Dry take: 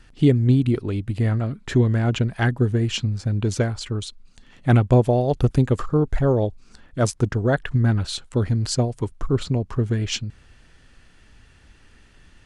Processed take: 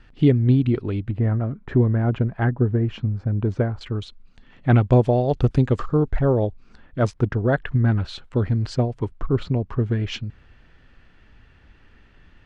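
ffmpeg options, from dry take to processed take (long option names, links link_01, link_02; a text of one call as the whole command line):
ffmpeg -i in.wav -af "asetnsamples=nb_out_samples=441:pad=0,asendcmd='1.11 lowpass f 1400;3.81 lowpass f 3000;4.78 lowpass f 4700;6.1 lowpass f 2900',lowpass=3400" out.wav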